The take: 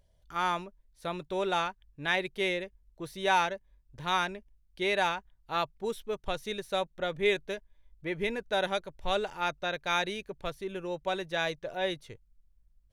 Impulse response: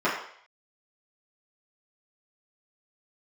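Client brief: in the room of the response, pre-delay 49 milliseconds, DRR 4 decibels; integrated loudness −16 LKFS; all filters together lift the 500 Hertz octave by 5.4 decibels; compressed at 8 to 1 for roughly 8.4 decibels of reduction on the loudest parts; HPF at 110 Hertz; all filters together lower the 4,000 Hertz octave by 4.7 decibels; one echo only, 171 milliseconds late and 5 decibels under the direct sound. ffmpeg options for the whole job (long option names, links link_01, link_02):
-filter_complex "[0:a]highpass=110,equalizer=frequency=500:width_type=o:gain=7,equalizer=frequency=4000:width_type=o:gain=-5.5,acompressor=threshold=-28dB:ratio=8,aecho=1:1:171:0.562,asplit=2[link_01][link_02];[1:a]atrim=start_sample=2205,adelay=49[link_03];[link_02][link_03]afir=irnorm=-1:irlink=0,volume=-19.5dB[link_04];[link_01][link_04]amix=inputs=2:normalize=0,volume=16dB"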